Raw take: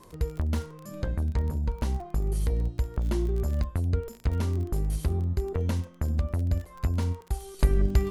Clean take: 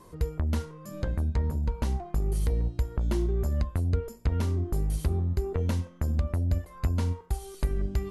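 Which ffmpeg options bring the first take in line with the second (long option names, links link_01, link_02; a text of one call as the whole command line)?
ffmpeg -i in.wav -af "adeclick=threshold=4,asetnsamples=nb_out_samples=441:pad=0,asendcmd='7.59 volume volume -6dB',volume=0dB" out.wav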